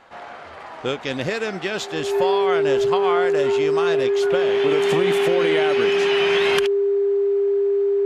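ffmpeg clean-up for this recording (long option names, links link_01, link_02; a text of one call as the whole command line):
ffmpeg -i in.wav -af "bandreject=frequency=400:width=30" out.wav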